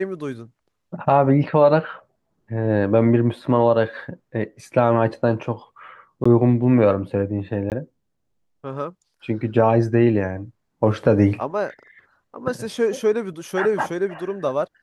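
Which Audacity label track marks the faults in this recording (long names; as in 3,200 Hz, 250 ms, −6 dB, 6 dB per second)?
6.240000	6.250000	drop-out 15 ms
7.700000	7.720000	drop-out 18 ms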